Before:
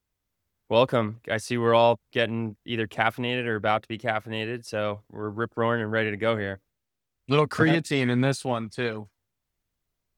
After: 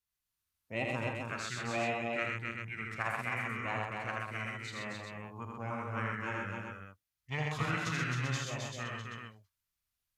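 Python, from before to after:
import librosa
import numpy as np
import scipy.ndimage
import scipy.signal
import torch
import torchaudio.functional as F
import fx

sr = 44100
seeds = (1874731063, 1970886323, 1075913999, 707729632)

y = fx.tone_stack(x, sr, knobs='5-5-5')
y = fx.formant_shift(y, sr, semitones=-5)
y = fx.echo_multitap(y, sr, ms=(46, 81, 128, 264, 307, 389), db=(-14.0, -3.5, -4.0, -4.0, -10.5, -6.5))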